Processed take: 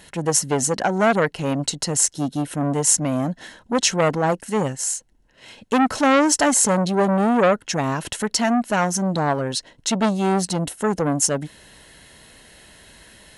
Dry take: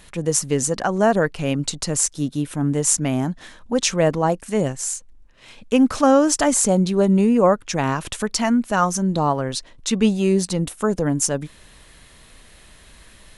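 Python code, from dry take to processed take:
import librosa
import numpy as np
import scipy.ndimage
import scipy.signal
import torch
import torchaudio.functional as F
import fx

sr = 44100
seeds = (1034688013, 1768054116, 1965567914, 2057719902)

y = fx.notch_comb(x, sr, f0_hz=1200.0)
y = fx.transformer_sat(y, sr, knee_hz=1400.0)
y = F.gain(torch.from_numpy(y), 3.0).numpy()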